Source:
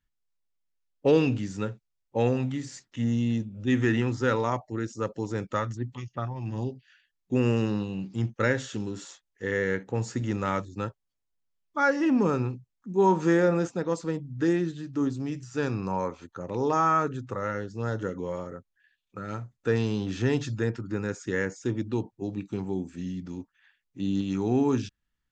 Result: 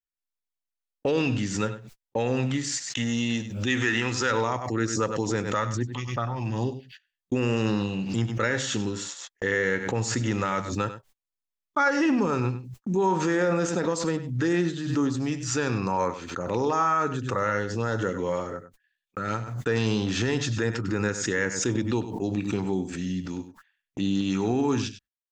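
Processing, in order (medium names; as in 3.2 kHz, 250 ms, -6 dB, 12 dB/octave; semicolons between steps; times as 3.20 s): gate -46 dBFS, range -56 dB; peak limiter -21 dBFS, peak gain reduction 10.5 dB; tilt shelf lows -3.5 dB, about 690 Hz, from 2.64 s lows -8.5 dB, from 4.30 s lows -3.5 dB; delay 98 ms -12.5 dB; swell ahead of each attack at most 60 dB/s; trim +6 dB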